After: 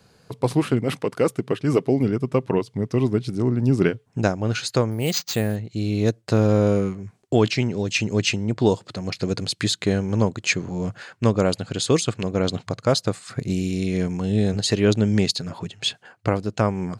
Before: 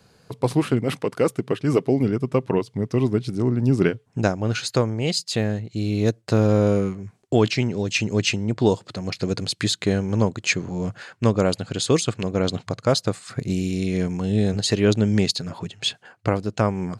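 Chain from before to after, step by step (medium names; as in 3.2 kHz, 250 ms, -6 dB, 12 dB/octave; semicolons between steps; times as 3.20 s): 4.91–5.56 s: careless resampling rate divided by 4×, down none, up hold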